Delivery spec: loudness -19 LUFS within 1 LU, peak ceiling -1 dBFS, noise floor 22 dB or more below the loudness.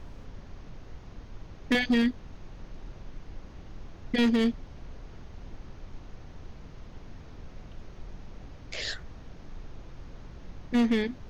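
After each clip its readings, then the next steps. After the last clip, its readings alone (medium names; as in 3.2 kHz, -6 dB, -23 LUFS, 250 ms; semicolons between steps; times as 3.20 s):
clipped samples 0.7%; clipping level -19.0 dBFS; noise floor -48 dBFS; noise floor target -50 dBFS; loudness -27.5 LUFS; peak level -19.0 dBFS; loudness target -19.0 LUFS
-> clip repair -19 dBFS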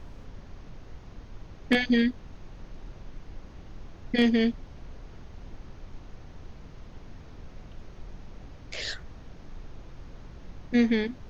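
clipped samples 0.0%; noise floor -48 dBFS; noise floor target -49 dBFS
-> noise print and reduce 6 dB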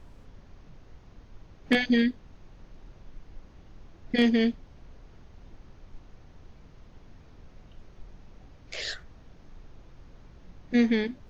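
noise floor -53 dBFS; loudness -26.5 LUFS; peak level -10.0 dBFS; loudness target -19.0 LUFS
-> trim +7.5 dB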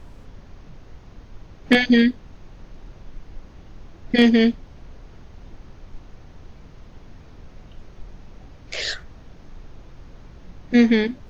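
loudness -19.0 LUFS; peak level -2.5 dBFS; noise floor -46 dBFS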